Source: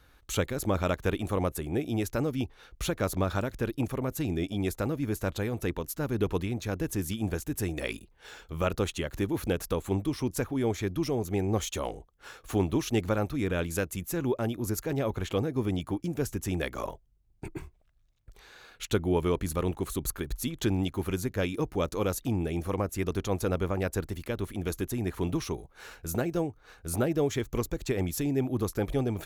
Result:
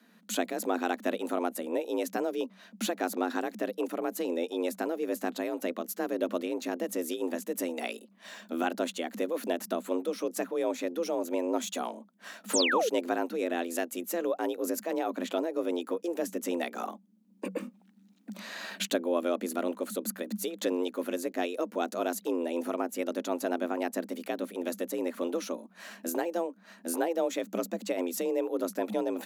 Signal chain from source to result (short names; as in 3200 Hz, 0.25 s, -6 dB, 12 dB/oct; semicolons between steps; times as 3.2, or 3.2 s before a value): recorder AGC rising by 8.8 dB/s; painted sound fall, 12.53–12.89, 230–9300 Hz -25 dBFS; frequency shift +170 Hz; gain -2.5 dB